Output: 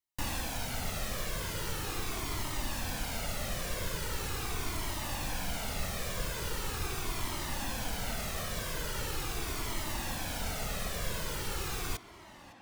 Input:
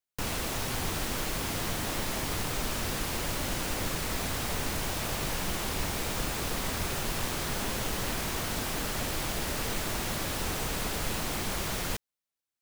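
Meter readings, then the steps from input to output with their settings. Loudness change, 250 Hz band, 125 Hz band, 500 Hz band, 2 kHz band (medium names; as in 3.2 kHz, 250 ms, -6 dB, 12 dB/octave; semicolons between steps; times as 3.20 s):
-4.0 dB, -6.0 dB, -3.0 dB, -5.0 dB, -4.0 dB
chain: gain riding; tape echo 557 ms, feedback 83%, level -15 dB, low-pass 3.9 kHz; Shepard-style flanger falling 0.41 Hz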